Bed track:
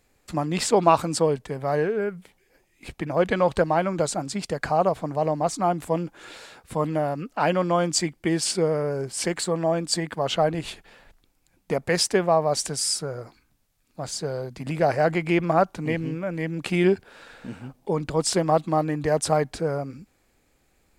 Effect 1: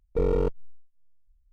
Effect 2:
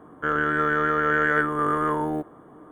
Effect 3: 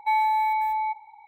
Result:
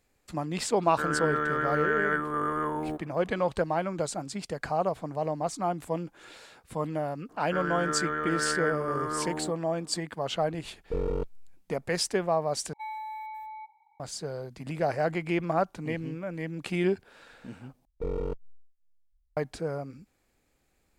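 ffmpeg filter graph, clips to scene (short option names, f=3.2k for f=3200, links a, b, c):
-filter_complex "[2:a]asplit=2[a][b];[1:a]asplit=2[c][d];[0:a]volume=-6.5dB,asplit=3[e][f][g];[e]atrim=end=12.734[h];[3:a]atrim=end=1.27,asetpts=PTS-STARTPTS,volume=-15.5dB[i];[f]atrim=start=13.996:end=17.854[j];[d]atrim=end=1.52,asetpts=PTS-STARTPTS,volume=-8dB[k];[g]atrim=start=19.366[l];[a]atrim=end=2.71,asetpts=PTS-STARTPTS,volume=-6dB,afade=t=in:d=0.004:c=hsin,afade=t=out:st=2.706:d=0.004:c=hsin,adelay=750[m];[b]atrim=end=2.71,asetpts=PTS-STARTPTS,volume=-8.5dB,afade=t=in:d=0.004:c=hsin,afade=t=out:st=2.706:d=0.004:c=hsin,adelay=7290[n];[c]atrim=end=1.52,asetpts=PTS-STARTPTS,volume=-6dB,afade=t=in:d=0.004:c=hsin,afade=t=out:st=1.516:d=0.004:c=hsin,adelay=10750[o];[h][i]acrossfade=d=0.004:c1=hsin:c2=hsin[p];[p][j]acrossfade=d=0.004:c1=hsin:c2=hsin[q];[q][k]acrossfade=d=0.004:c1=hsin:c2=hsin[r];[r][l]acrossfade=d=0.004:c1=hsin:c2=hsin[s];[s][m][n][o]amix=inputs=4:normalize=0"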